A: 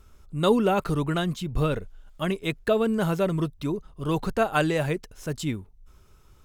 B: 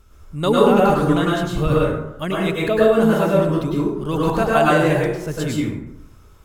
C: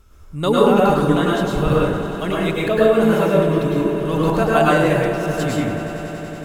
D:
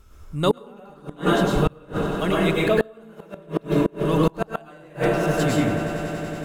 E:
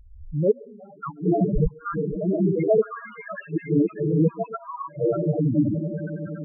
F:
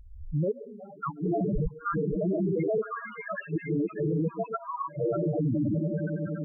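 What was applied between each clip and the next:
plate-style reverb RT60 0.86 s, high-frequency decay 0.5×, pre-delay 90 ms, DRR -5.5 dB; gain +1.5 dB
swelling echo 94 ms, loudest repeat 5, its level -17 dB
flipped gate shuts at -7 dBFS, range -30 dB
delay with a stepping band-pass 0.596 s, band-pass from 1300 Hz, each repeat 0.7 oct, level -3.5 dB; loudest bins only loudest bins 4; gain +3 dB
limiter -21 dBFS, peak gain reduction 11.5 dB

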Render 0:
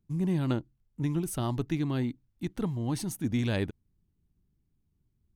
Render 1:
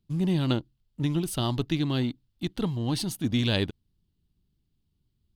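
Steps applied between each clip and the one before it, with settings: band shelf 3700 Hz +9.5 dB 1 oct; in parallel at -7 dB: crossover distortion -42.5 dBFS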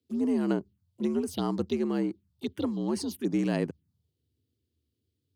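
frequency shift +71 Hz; envelope phaser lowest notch 170 Hz, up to 3600 Hz, full sweep at -24 dBFS; gain -1.5 dB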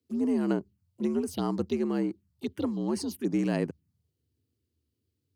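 bell 3500 Hz -5.5 dB 0.32 oct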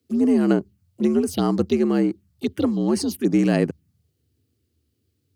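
notch 960 Hz, Q 6.5; gain +9 dB

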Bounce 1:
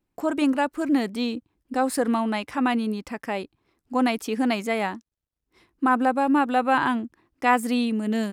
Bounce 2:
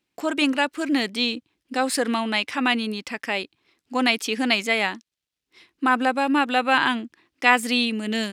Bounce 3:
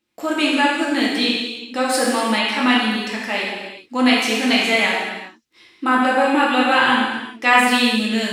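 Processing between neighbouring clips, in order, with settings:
weighting filter D
non-linear reverb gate 0.45 s falling, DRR -5 dB; gain -1 dB

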